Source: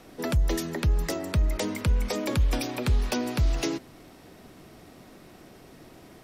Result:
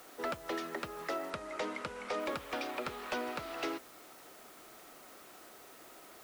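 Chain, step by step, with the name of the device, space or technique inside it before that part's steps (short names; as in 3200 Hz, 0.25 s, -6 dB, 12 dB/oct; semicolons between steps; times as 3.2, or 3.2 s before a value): drive-through speaker (BPF 480–3000 Hz; bell 1300 Hz +7.5 dB 0.24 oct; hard clip -27 dBFS, distortion -15 dB; white noise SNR 17 dB); 1.3–2.2 LPF 9800 Hz 24 dB/oct; gain -2.5 dB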